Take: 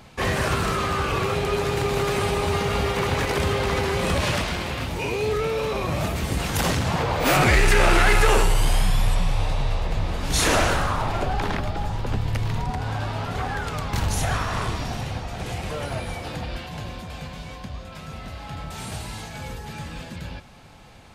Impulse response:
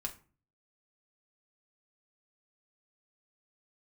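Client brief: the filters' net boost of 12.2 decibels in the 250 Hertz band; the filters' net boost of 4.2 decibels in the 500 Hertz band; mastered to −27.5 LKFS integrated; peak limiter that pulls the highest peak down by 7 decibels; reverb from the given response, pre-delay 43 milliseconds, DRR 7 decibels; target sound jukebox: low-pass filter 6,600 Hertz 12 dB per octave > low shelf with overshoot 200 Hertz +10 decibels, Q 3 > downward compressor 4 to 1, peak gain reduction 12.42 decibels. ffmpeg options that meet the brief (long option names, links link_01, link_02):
-filter_complex "[0:a]equalizer=frequency=250:width_type=o:gain=7,equalizer=frequency=500:width_type=o:gain=6,alimiter=limit=-12.5dB:level=0:latency=1,asplit=2[link_01][link_02];[1:a]atrim=start_sample=2205,adelay=43[link_03];[link_02][link_03]afir=irnorm=-1:irlink=0,volume=-6.5dB[link_04];[link_01][link_04]amix=inputs=2:normalize=0,lowpass=6600,lowshelf=frequency=200:width_type=q:width=3:gain=10,acompressor=threshold=-19dB:ratio=4,volume=-4dB"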